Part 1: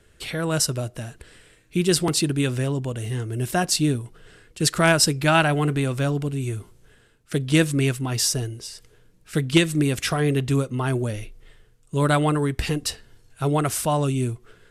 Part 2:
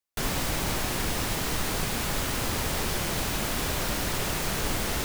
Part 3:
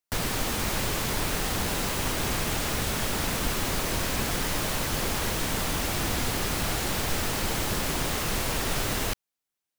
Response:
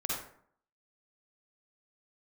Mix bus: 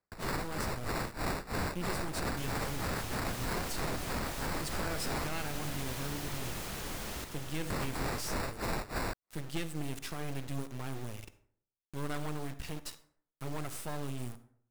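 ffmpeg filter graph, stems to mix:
-filter_complex "[0:a]asoftclip=type=tanh:threshold=-12.5dB,acrusher=bits=3:dc=4:mix=0:aa=0.000001,volume=-13.5dB,asplit=2[link_01][link_02];[link_02]volume=-15dB[link_03];[1:a]acontrast=34,adelay=2200,volume=-17.5dB,asplit=2[link_04][link_05];[link_05]volume=-5.5dB[link_06];[2:a]acrusher=samples=14:mix=1:aa=0.000001,tremolo=f=3.1:d=0.93,volume=-1dB,asplit=3[link_07][link_08][link_09];[link_07]atrim=end=5.34,asetpts=PTS-STARTPTS,afade=type=out:start_time=5.336:duration=0.004:curve=hsin[link_10];[link_08]atrim=start=5.34:end=7.7,asetpts=PTS-STARTPTS,volume=0[link_11];[link_09]atrim=start=7.7,asetpts=PTS-STARTPTS,afade=type=in:duration=0.004:curve=hsin[link_12];[link_10][link_11][link_12]concat=n=3:v=0:a=1[link_13];[3:a]atrim=start_sample=2205[link_14];[link_03][link_14]afir=irnorm=-1:irlink=0[link_15];[link_06]aecho=0:1:965:1[link_16];[link_01][link_04][link_13][link_15][link_16]amix=inputs=5:normalize=0,alimiter=level_in=1.5dB:limit=-24dB:level=0:latency=1:release=56,volume=-1.5dB"

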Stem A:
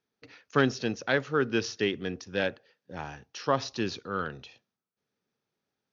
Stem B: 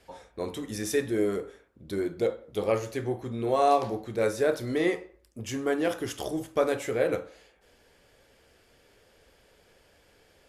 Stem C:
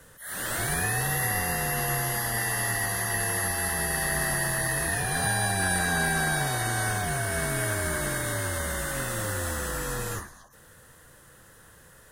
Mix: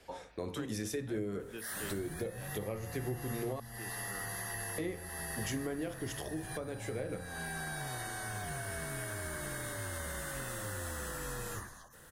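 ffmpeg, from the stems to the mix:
ffmpeg -i stem1.wav -i stem2.wav -i stem3.wav -filter_complex "[0:a]volume=-16.5dB[link_01];[1:a]volume=1dB,asplit=3[link_02][link_03][link_04];[link_02]atrim=end=3.6,asetpts=PTS-STARTPTS,afade=type=out:start_time=3.596:duration=0.004:curve=hsin[link_05];[link_03]atrim=start=3.6:end=4.78,asetpts=PTS-STARTPTS,volume=0[link_06];[link_04]atrim=start=4.78,asetpts=PTS-STARTPTS,afade=type=in:duration=0.004:curve=hsin[link_07];[link_05][link_06][link_07]concat=n=3:v=0:a=1[link_08];[2:a]acompressor=threshold=-34dB:ratio=6,adelay=1400,volume=-2.5dB[link_09];[link_01][link_08][link_09]amix=inputs=3:normalize=0,bandreject=frequency=57.55:width_type=h:width=4,bandreject=frequency=115.1:width_type=h:width=4,bandreject=frequency=172.65:width_type=h:width=4,bandreject=frequency=230.2:width_type=h:width=4,acrossover=split=200[link_10][link_11];[link_11]acompressor=threshold=-36dB:ratio=6[link_12];[link_10][link_12]amix=inputs=2:normalize=0,alimiter=level_in=2.5dB:limit=-24dB:level=0:latency=1:release=484,volume=-2.5dB" out.wav

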